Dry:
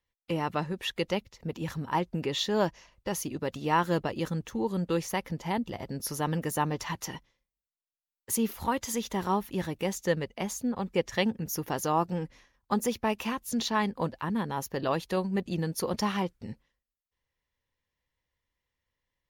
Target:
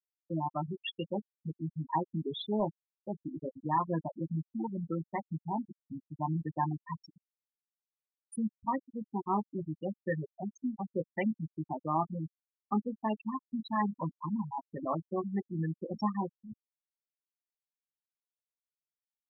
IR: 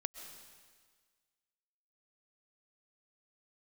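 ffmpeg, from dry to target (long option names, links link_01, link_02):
-filter_complex "[0:a]acrossover=split=160|1500|2600[link_01][link_02][link_03][link_04];[link_04]asoftclip=type=tanh:threshold=-29.5dB[link_05];[link_01][link_02][link_03][link_05]amix=inputs=4:normalize=0,highpass=frequency=120:poles=1,asplit=2[link_06][link_07];[link_07]adelay=19,volume=-7dB[link_08];[link_06][link_08]amix=inputs=2:normalize=0,volume=18dB,asoftclip=hard,volume=-18dB,asuperstop=centerf=1500:order=20:qfactor=6.4,equalizer=frequency=470:width_type=o:width=0.34:gain=-9,afftfilt=real='re*gte(hypot(re,im),0.1)':imag='im*gte(hypot(re,im),0.1)':win_size=1024:overlap=0.75,volume=-2dB"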